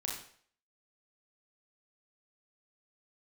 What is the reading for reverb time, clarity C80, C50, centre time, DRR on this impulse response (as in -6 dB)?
0.55 s, 7.5 dB, 3.5 dB, 41 ms, -2.0 dB